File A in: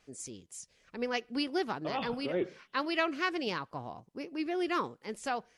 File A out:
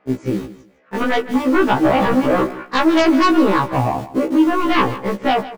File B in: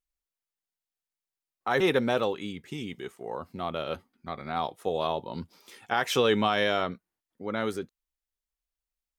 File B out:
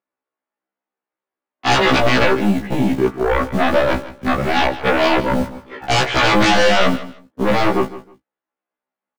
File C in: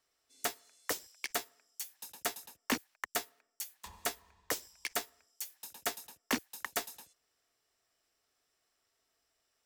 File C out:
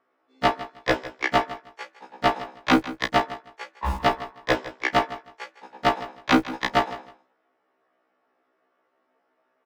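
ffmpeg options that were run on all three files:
-filter_complex "[0:a]aemphasis=mode=reproduction:type=75kf,agate=range=-11dB:threshold=-54dB:ratio=16:detection=peak,lowpass=1500,equalizer=frequency=88:width_type=o:width=0.93:gain=5,asplit=2[link_01][link_02];[link_02]acompressor=threshold=-41dB:ratio=16,volume=0dB[link_03];[link_01][link_03]amix=inputs=2:normalize=0,aeval=exprs='0.237*sin(PI/2*6.31*val(0)/0.237)':channel_layout=same,acrossover=split=200[link_04][link_05];[link_04]acrusher=bits=5:mix=0:aa=0.000001[link_06];[link_06][link_05]amix=inputs=2:normalize=0,asplit=2[link_07][link_08];[link_08]adelay=19,volume=-10dB[link_09];[link_07][link_09]amix=inputs=2:normalize=0,aecho=1:1:157|314:0.168|0.0353,afftfilt=real='re*1.73*eq(mod(b,3),0)':imag='im*1.73*eq(mod(b,3),0)':win_size=2048:overlap=0.75,volume=3.5dB"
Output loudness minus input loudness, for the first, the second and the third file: +17.5, +12.5, +13.5 LU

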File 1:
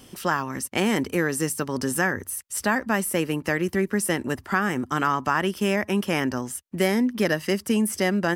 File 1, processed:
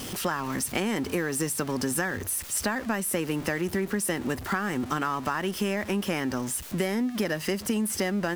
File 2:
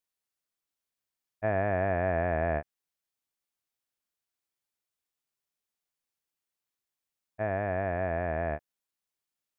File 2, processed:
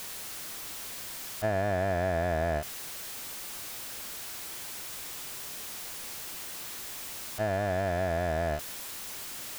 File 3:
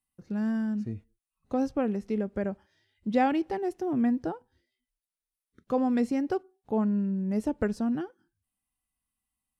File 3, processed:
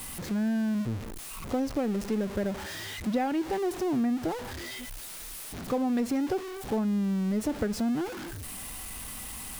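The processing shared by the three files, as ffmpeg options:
-af "aeval=exprs='val(0)+0.5*0.0237*sgn(val(0))':channel_layout=same,acompressor=threshold=-24dB:ratio=6"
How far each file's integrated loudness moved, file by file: −3.5, −3.0, −1.5 LU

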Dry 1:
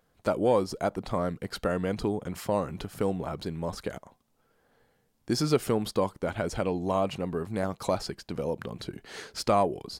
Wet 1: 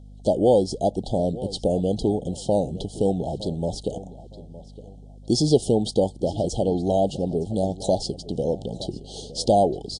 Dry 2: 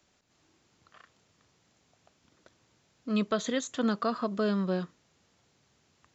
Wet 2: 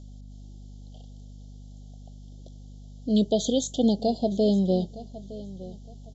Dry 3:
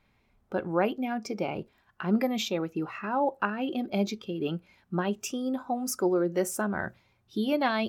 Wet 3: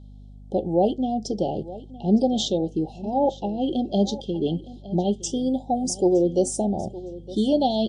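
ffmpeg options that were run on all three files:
-filter_complex "[0:a]asuperstop=centerf=1600:order=20:qfactor=0.72,aeval=exprs='val(0)+0.00355*(sin(2*PI*50*n/s)+sin(2*PI*2*50*n/s)/2+sin(2*PI*3*50*n/s)/3+sin(2*PI*4*50*n/s)/4+sin(2*PI*5*50*n/s)/5)':channel_layout=same,asplit=2[link_01][link_02];[link_02]adelay=913,lowpass=frequency=4800:poles=1,volume=-17dB,asplit=2[link_03][link_04];[link_04]adelay=913,lowpass=frequency=4800:poles=1,volume=0.28,asplit=2[link_05][link_06];[link_06]adelay=913,lowpass=frequency=4800:poles=1,volume=0.28[link_07];[link_03][link_05][link_07]amix=inputs=3:normalize=0[link_08];[link_01][link_08]amix=inputs=2:normalize=0,volume=7dB" -ar 22050 -c:a libmp3lame -b:a 48k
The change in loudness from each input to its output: +6.0, +5.5, +6.0 LU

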